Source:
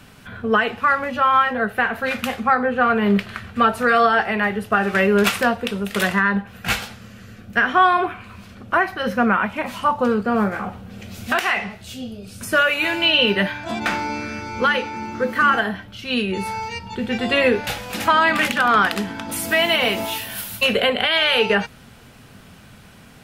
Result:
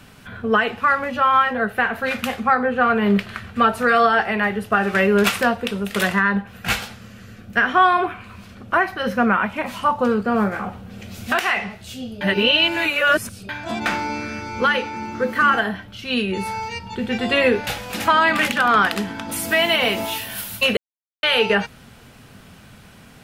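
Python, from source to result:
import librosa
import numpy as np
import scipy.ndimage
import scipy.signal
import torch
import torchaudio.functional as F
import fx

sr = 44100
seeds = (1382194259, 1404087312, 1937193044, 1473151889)

y = fx.edit(x, sr, fx.reverse_span(start_s=12.21, length_s=1.28),
    fx.silence(start_s=20.77, length_s=0.46), tone=tone)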